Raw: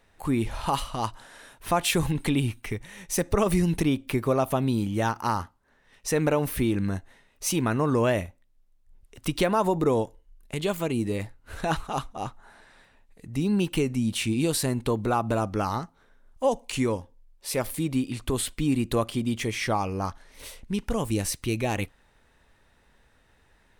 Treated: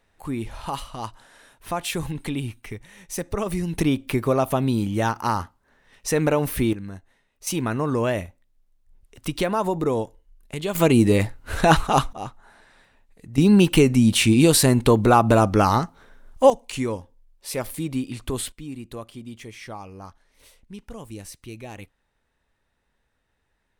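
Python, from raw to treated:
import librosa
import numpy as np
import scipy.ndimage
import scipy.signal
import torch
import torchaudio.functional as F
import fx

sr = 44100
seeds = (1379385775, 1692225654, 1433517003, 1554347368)

y = fx.gain(x, sr, db=fx.steps((0.0, -3.5), (3.78, 3.0), (6.73, -8.0), (7.47, 0.0), (10.75, 11.0), (12.13, 0.0), (13.38, 9.5), (16.5, -0.5), (18.52, -11.0)))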